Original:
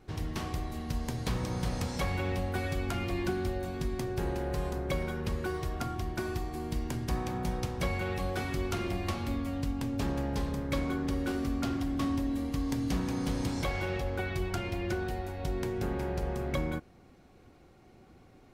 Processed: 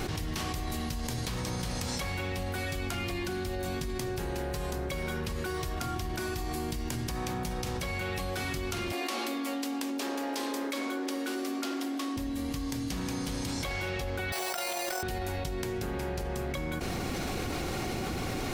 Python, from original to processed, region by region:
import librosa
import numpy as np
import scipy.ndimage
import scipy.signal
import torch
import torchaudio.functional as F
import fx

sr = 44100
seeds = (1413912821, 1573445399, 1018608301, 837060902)

y = fx.chain(x, sr, fx.steep_highpass(hz=240.0, slope=72),
    fx.echo_wet_lowpass(ms=78, feedback_pct=73, hz=560.0, wet_db=-4.5), at=(8.92, 12.17))
y = fx.chain(y, sr, fx.highpass_res(hz=650.0, q=2.6),
    fx.sample_hold(seeds[0], rate_hz=6700.0, jitter_pct=0),
    fx.over_compress(threshold_db=-40.0, ratio=-0.5), at=(14.32, 15.03))
y = fx.high_shelf(y, sr, hz=2000.0, db=9.5)
y = fx.env_flatten(y, sr, amount_pct=100)
y = y * 10.0 ** (-7.0 / 20.0)